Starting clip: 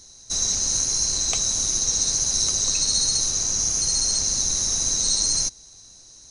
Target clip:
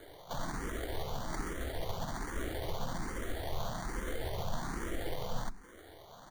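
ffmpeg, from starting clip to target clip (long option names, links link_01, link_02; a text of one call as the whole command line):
ffmpeg -i in.wav -filter_complex "[0:a]acrossover=split=190|1000[link_01][link_02][link_03];[link_03]acompressor=threshold=-33dB:ratio=8[link_04];[link_01][link_02][link_04]amix=inputs=3:normalize=0,asplit=2[link_05][link_06];[link_06]adelay=80,highpass=300,lowpass=3400,asoftclip=type=hard:threshold=-28.5dB,volume=-18dB[link_07];[link_05][link_07]amix=inputs=2:normalize=0,asplit=4[link_08][link_09][link_10][link_11];[link_09]asetrate=37084,aresample=44100,atempo=1.18921,volume=-11dB[link_12];[link_10]asetrate=52444,aresample=44100,atempo=0.840896,volume=-14dB[link_13];[link_11]asetrate=58866,aresample=44100,atempo=0.749154,volume=-13dB[link_14];[link_08][link_12][link_13][link_14]amix=inputs=4:normalize=0,bandreject=frequency=50:width_type=h:width=6,bandreject=frequency=100:width_type=h:width=6,bandreject=frequency=150:width_type=h:width=6,bandreject=frequency=200:width_type=h:width=6,bandreject=frequency=250:width_type=h:width=6,bandreject=frequency=300:width_type=h:width=6,bandreject=frequency=350:width_type=h:width=6,asetrate=32097,aresample=44100,atempo=1.37395,lowpass=frequency=2700:poles=1,acrusher=samples=17:mix=1:aa=0.000001,asplit=2[link_15][link_16];[link_16]afreqshift=1.2[link_17];[link_15][link_17]amix=inputs=2:normalize=1,volume=1.5dB" out.wav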